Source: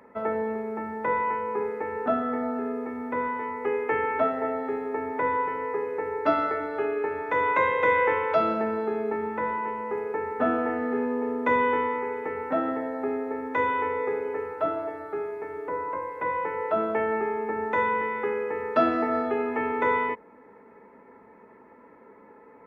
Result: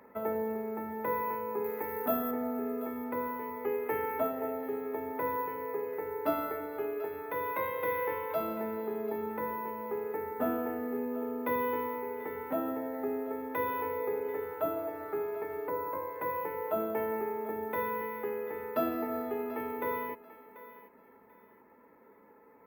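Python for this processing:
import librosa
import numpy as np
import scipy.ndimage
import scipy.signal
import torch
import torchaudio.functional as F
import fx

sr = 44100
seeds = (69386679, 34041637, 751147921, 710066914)

y = np.repeat(x[::3], 3)[:len(x)]
y = fx.dynamic_eq(y, sr, hz=1700.0, q=0.84, threshold_db=-40.0, ratio=4.0, max_db=-6)
y = fx.rider(y, sr, range_db=10, speed_s=2.0)
y = fx.high_shelf(y, sr, hz=2900.0, db=11.0, at=(1.64, 2.31))
y = fx.echo_thinned(y, sr, ms=738, feedback_pct=27, hz=510.0, wet_db=-15.0)
y = y * librosa.db_to_amplitude(-6.0)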